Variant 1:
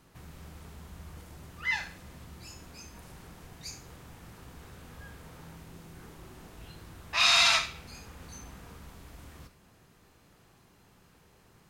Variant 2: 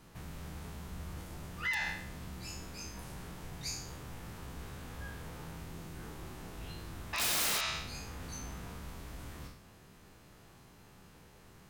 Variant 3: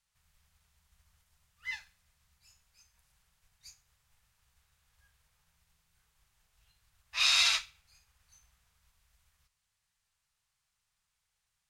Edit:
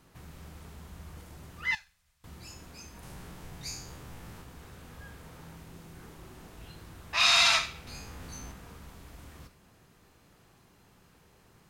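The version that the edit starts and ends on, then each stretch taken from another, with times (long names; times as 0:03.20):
1
0:01.75–0:02.24: punch in from 3
0:03.03–0:04.42: punch in from 2
0:07.87–0:08.52: punch in from 2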